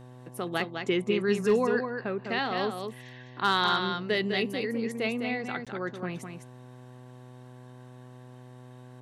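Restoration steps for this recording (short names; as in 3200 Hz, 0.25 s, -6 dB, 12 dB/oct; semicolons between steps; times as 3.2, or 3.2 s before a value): clip repair -14.5 dBFS; de-hum 125.4 Hz, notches 9; interpolate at 5.65, 16 ms; inverse comb 0.205 s -6 dB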